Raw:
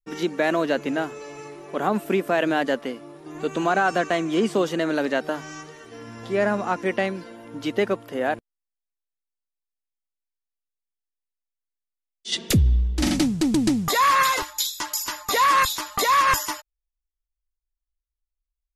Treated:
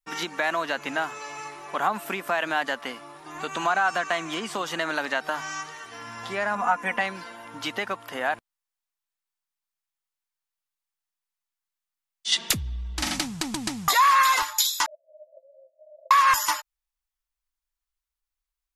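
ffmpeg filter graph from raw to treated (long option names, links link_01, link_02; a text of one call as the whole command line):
ffmpeg -i in.wav -filter_complex "[0:a]asettb=1/sr,asplit=3[link_01][link_02][link_03];[link_01]atrim=end=6.554[link_04];[link_02]atrim=start=6.55:end=7.01,asetpts=PTS-STARTPTS,afade=type=in:duration=0.004:curve=qsin,afade=type=out:start_time=0.456:duration=0.004:curve=qsin,equalizer=frequency=4400:width=1.4:gain=-12.5,aecho=1:1:4.1:0.72,atrim=end_sample=20286[link_05];[link_03]atrim=start=7.006[link_06];[link_04][link_05]acrossfade=duration=0.004:curve1=hsin:curve2=qsin[link_07];[link_07][link_06]acrossfade=duration=0.004:curve1=qsin:curve2=hsin,asettb=1/sr,asplit=3[link_08][link_09][link_10];[link_08]atrim=end=14.864[link_11];[link_09]atrim=start=14.86:end=16.11,asetpts=PTS-STARTPTS,afade=type=in:duration=0.004:curve=qsin,afade=type=out:start_time=1.246:duration=0.004:curve=qsin,aeval=exprs='val(0)+0.5*0.0299*sgn(val(0))':channel_layout=same,acompressor=threshold=-31dB:ratio=4:attack=3.2:release=140:knee=1:detection=peak,asuperpass=centerf=590:order=20:qfactor=4[link_12];[link_10]atrim=start=16.106[link_13];[link_11][link_12]acrossfade=duration=0.004:curve1=hsin:curve2=qsin[link_14];[link_14][link_13]acrossfade=duration=0.004:curve1=qsin:curve2=hsin,acompressor=threshold=-23dB:ratio=6,lowshelf=frequency=640:width_type=q:width=1.5:gain=-11,volume=5dB" out.wav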